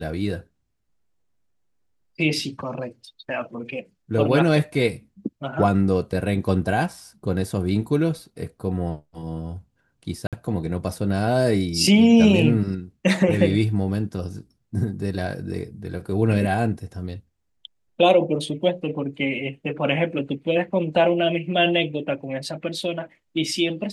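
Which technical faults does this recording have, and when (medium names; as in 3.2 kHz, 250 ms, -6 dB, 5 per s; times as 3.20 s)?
10.27–10.33 s: dropout 57 ms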